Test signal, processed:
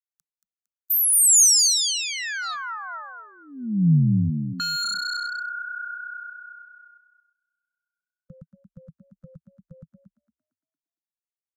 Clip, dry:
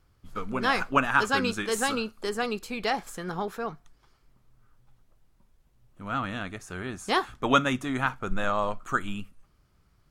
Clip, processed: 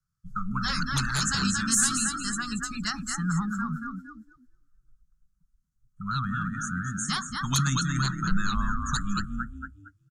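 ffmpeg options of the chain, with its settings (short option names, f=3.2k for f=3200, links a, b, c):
-filter_complex "[0:a]firequalizer=gain_entry='entry(100,0);entry(160,12);entry(330,-26);entry(490,-29);entry(1300,8);entry(2200,-8);entry(6400,12);entry(11000,6)':delay=0.05:min_phase=1,asplit=6[a][b][c][d][e][f];[b]adelay=229,afreqshift=31,volume=-5.5dB[g];[c]adelay=458,afreqshift=62,volume=-13.5dB[h];[d]adelay=687,afreqshift=93,volume=-21.4dB[i];[e]adelay=916,afreqshift=124,volume=-29.4dB[j];[f]adelay=1145,afreqshift=155,volume=-37.3dB[k];[a][g][h][i][j][k]amix=inputs=6:normalize=0,acrossover=split=200|2300[l][m][n];[m]aeval=exprs='0.0794*(abs(mod(val(0)/0.0794+3,4)-2)-1)':c=same[o];[l][o][n]amix=inputs=3:normalize=0,afftdn=nr=23:nf=-37,acrossover=split=390|3000[p][q][r];[q]acompressor=threshold=-33dB:ratio=6[s];[p][s][r]amix=inputs=3:normalize=0,volume=2.5dB"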